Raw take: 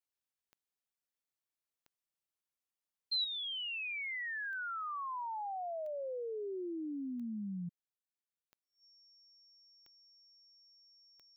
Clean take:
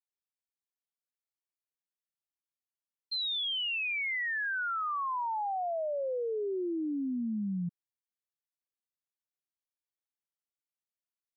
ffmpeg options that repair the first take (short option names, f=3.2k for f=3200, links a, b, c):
-af "adeclick=t=4,bandreject=f=5.5k:w=30,asetnsamples=n=441:p=0,asendcmd='3.24 volume volume 7dB',volume=0dB"